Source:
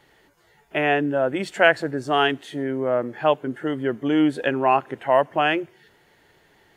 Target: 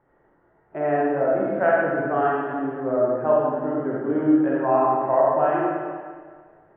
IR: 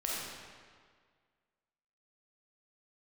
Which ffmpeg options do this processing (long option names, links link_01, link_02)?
-filter_complex "[0:a]lowpass=frequency=1400:width=0.5412,lowpass=frequency=1400:width=1.3066[link_01];[1:a]atrim=start_sample=2205[link_02];[link_01][link_02]afir=irnorm=-1:irlink=0,volume=-4.5dB"